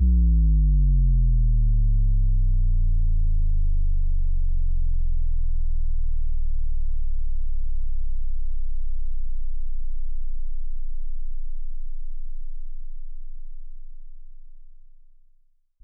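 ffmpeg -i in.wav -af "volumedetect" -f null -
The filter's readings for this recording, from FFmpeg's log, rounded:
mean_volume: -19.5 dB
max_volume: -13.3 dB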